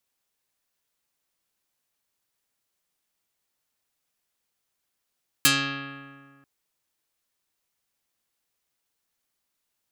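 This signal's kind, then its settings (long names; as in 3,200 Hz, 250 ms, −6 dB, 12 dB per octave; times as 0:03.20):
Karplus-Strong string C#3, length 0.99 s, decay 1.88 s, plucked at 0.28, dark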